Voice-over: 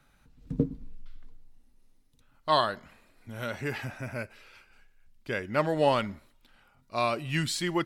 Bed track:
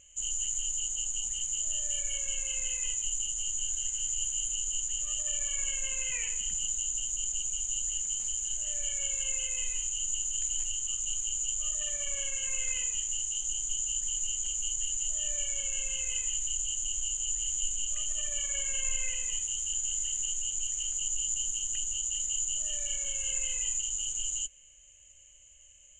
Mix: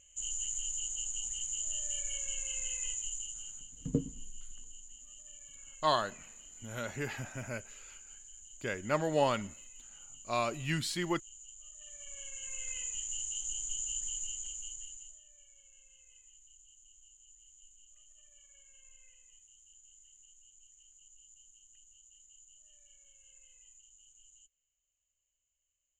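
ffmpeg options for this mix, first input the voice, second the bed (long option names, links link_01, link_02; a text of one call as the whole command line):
ffmpeg -i stem1.wav -i stem2.wav -filter_complex "[0:a]adelay=3350,volume=-4.5dB[link_01];[1:a]volume=10.5dB,afade=type=out:start_time=2.88:duration=0.83:silence=0.16788,afade=type=in:start_time=11.75:duration=1.48:silence=0.177828,afade=type=out:start_time=14.01:duration=1.22:silence=0.0707946[link_02];[link_01][link_02]amix=inputs=2:normalize=0" out.wav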